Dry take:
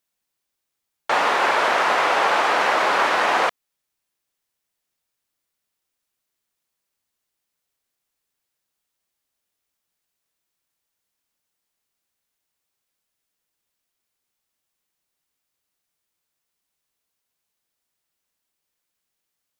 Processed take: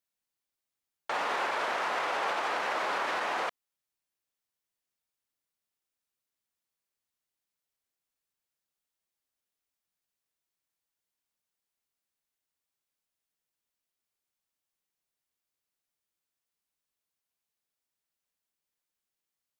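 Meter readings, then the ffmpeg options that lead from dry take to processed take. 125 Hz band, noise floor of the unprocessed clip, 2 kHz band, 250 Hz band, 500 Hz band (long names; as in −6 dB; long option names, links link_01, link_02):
can't be measured, −81 dBFS, −12.0 dB, −12.0 dB, −12.0 dB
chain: -af "alimiter=limit=-13.5dB:level=0:latency=1:release=42,volume=-9dB"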